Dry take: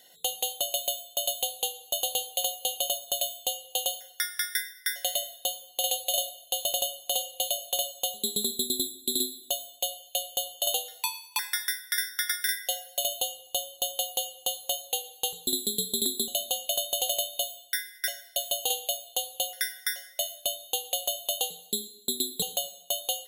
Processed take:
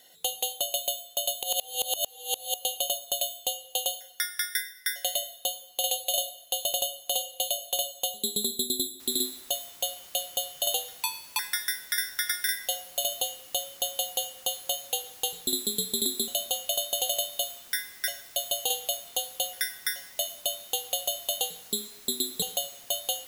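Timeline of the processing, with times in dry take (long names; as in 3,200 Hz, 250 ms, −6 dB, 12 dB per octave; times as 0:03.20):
0:01.43–0:02.54: reverse
0:09.00: noise floor change −70 dB −51 dB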